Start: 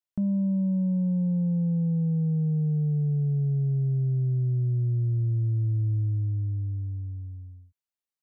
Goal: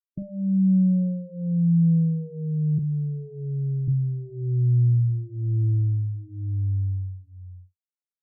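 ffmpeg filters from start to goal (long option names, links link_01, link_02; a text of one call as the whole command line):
ffmpeg -i in.wav -filter_complex "[0:a]asettb=1/sr,asplit=3[link_01][link_02][link_03];[link_01]atrim=end=2.784[link_04];[link_02]atrim=start=2.78:end=3.88,asetpts=PTS-STARTPTS,afade=type=in:duration=0.004:curve=qsin,afade=type=out:start_time=1.096:duration=0.004:curve=qsin,highpass=180[link_05];[link_03]atrim=start=3.876[link_06];[link_04][link_05]acrossfade=duration=0.004:curve1=hsin:curve2=qsin[link_07];[link_07][link_06]acrossfade=duration=0.004:curve1=qsin:curve2=hsin,afftdn=noise_reduction=35:noise_floor=-32,asplit=2[link_08][link_09];[link_09]adelay=42,volume=-12.5dB[link_10];[link_08][link_10]amix=inputs=2:normalize=0,asplit=2[link_11][link_12];[link_12]adelay=2.8,afreqshift=-1.1[link_13];[link_11][link_13]amix=inputs=2:normalize=1,volume=5.5dB" out.wav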